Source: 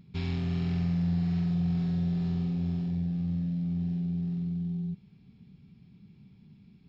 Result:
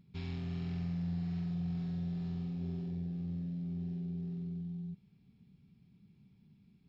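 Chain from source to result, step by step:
0:02.61–0:04.61: parametric band 390 Hz +8 dB 0.59 octaves
level −8.5 dB

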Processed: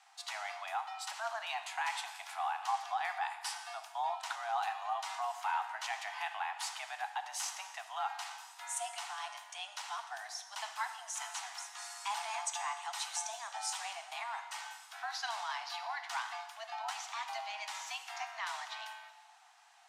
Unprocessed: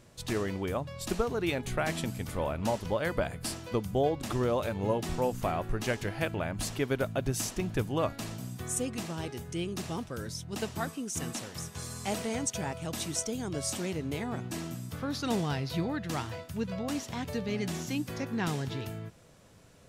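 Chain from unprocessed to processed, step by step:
high-frequency loss of the air 53 metres
brickwall limiter −23.5 dBFS, peak gain reduction 9 dB
frequency shifter +210 Hz
Butterworth high-pass 720 Hz 96 dB per octave
dense smooth reverb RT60 1.4 s, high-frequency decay 0.95×, DRR 7.5 dB

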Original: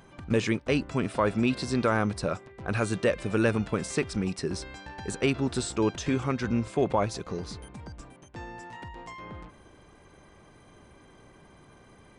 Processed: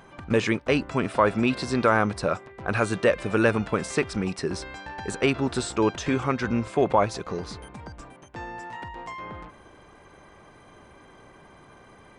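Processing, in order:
parametric band 1,100 Hz +6.5 dB 3 octaves

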